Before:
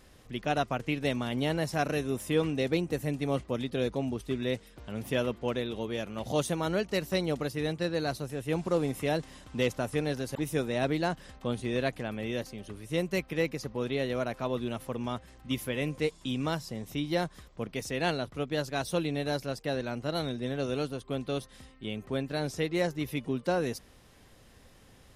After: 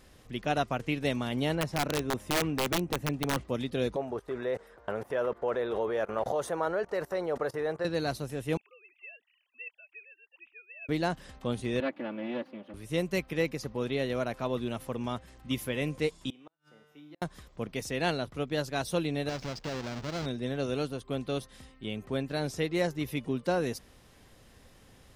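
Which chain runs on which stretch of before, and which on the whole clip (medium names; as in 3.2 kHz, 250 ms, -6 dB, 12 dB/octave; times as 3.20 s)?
1.55–3.41 s: low-pass 2.2 kHz 6 dB/octave + integer overflow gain 21.5 dB
3.96–7.85 s: level held to a coarse grid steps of 21 dB + high-order bell 840 Hz +15.5 dB 2.6 oct
8.57–10.89 s: formants replaced by sine waves + band-pass filter 2.6 kHz, Q 11
11.80–12.74 s: comb filter that takes the minimum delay 3.5 ms + high-pass 170 Hz 24 dB/octave + distance through air 410 m
16.30–17.22 s: three-band isolator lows -20 dB, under 240 Hz, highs -12 dB, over 3 kHz + feedback comb 150 Hz, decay 1.6 s, mix 90% + inverted gate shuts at -38 dBFS, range -37 dB
19.29–20.26 s: square wave that keeps the level + resonant high shelf 7.8 kHz -13.5 dB, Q 1.5 + compression 3:1, threshold -35 dBFS
whole clip: none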